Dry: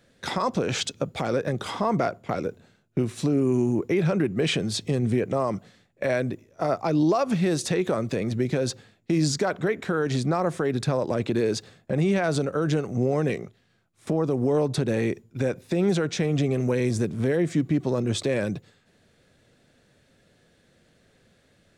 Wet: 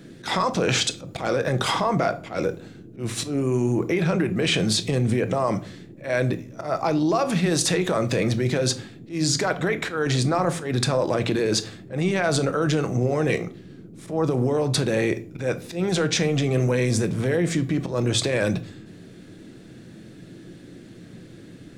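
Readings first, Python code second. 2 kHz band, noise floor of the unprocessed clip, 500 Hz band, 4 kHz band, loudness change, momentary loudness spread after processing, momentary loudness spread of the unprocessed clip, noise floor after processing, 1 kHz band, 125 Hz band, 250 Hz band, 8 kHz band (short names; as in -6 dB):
+5.0 dB, -63 dBFS, +1.5 dB, +7.0 dB, +2.0 dB, 9 LU, 7 LU, -45 dBFS, +3.0 dB, +2.5 dB, +0.5 dB, +7.5 dB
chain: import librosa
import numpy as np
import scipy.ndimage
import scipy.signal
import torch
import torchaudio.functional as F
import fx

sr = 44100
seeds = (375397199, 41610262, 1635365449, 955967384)

p1 = fx.peak_eq(x, sr, hz=200.0, db=-6.5, octaves=2.7)
p2 = fx.over_compress(p1, sr, threshold_db=-32.0, ratio=-1.0)
p3 = p1 + F.gain(torch.from_numpy(p2), 3.0).numpy()
p4 = fx.auto_swell(p3, sr, attack_ms=125.0)
p5 = fx.dmg_noise_band(p4, sr, seeds[0], low_hz=89.0, high_hz=370.0, level_db=-45.0)
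y = fx.room_shoebox(p5, sr, seeds[1], volume_m3=370.0, walls='furnished', distance_m=0.65)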